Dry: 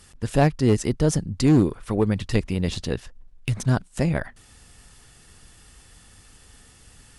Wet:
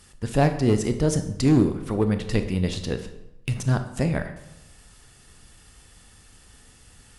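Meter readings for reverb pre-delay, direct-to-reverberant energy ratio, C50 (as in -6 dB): 21 ms, 8.0 dB, 10.5 dB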